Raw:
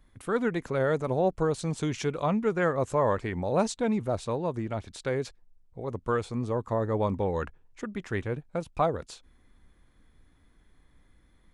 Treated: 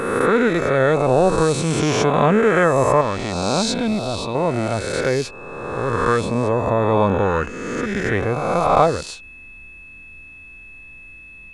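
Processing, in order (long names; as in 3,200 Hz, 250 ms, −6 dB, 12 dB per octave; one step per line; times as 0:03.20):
peak hold with a rise ahead of every peak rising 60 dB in 1.67 s
0:03.01–0:04.35: octave-band graphic EQ 125/500/1,000/2,000/4,000/8,000 Hz −5/−8/−4/−8/+8/−6 dB
steady tone 2,600 Hz −47 dBFS
level +8 dB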